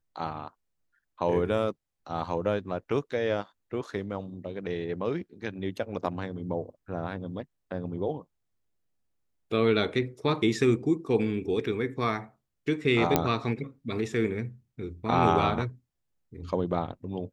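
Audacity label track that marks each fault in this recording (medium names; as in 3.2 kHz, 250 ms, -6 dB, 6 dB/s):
13.160000	13.160000	pop -7 dBFS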